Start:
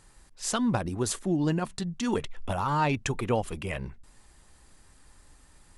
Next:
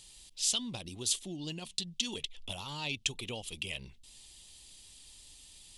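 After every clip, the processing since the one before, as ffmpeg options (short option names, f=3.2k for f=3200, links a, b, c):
-af "acompressor=threshold=-45dB:ratio=1.5,highshelf=f=2.2k:t=q:w=3:g=13.5,volume=-7dB"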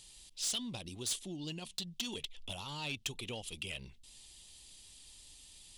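-af "asoftclip=type=tanh:threshold=-28dB,volume=-1.5dB"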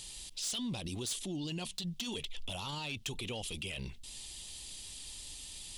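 -af "alimiter=level_in=17dB:limit=-24dB:level=0:latency=1:release=21,volume=-17dB,volume=9.5dB"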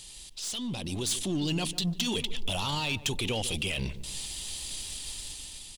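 -filter_complex "[0:a]dynaudnorm=f=370:g=5:m=9dB,aeval=exprs='0.0794*(cos(1*acos(clip(val(0)/0.0794,-1,1)))-cos(1*PI/2))+0.00316*(cos(6*acos(clip(val(0)/0.0794,-1,1)))-cos(6*PI/2))':c=same,asplit=2[a][b];[b]adelay=147,lowpass=f=920:p=1,volume=-13dB,asplit=2[c][d];[d]adelay=147,lowpass=f=920:p=1,volume=0.46,asplit=2[e][f];[f]adelay=147,lowpass=f=920:p=1,volume=0.46,asplit=2[g][h];[h]adelay=147,lowpass=f=920:p=1,volume=0.46,asplit=2[i][j];[j]adelay=147,lowpass=f=920:p=1,volume=0.46[k];[a][c][e][g][i][k]amix=inputs=6:normalize=0"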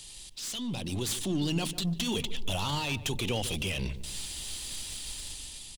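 -filter_complex "[0:a]acrossover=split=200|1900[a][b][c];[a]asplit=2[d][e];[e]adelay=42,volume=-6.5dB[f];[d][f]amix=inputs=2:normalize=0[g];[c]aeval=exprs='clip(val(0),-1,0.0126)':c=same[h];[g][b][h]amix=inputs=3:normalize=0"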